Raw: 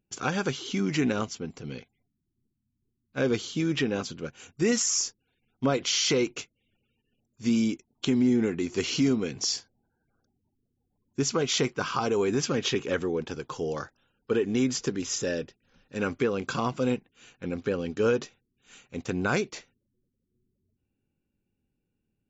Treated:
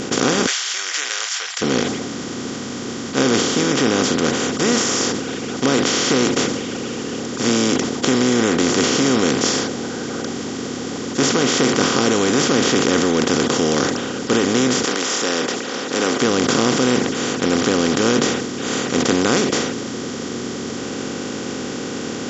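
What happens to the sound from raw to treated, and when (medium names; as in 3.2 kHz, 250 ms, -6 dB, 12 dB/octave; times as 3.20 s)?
0.46–1.62 s: rippled Chebyshev high-pass 1.6 kHz, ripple 3 dB
14.83–16.21 s: high-pass 1 kHz -> 400 Hz 24 dB/octave
whole clip: spectral levelling over time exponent 0.2; peaking EQ 270 Hz +2.5 dB 0.77 oct; decay stretcher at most 40 dB/s; trim -1 dB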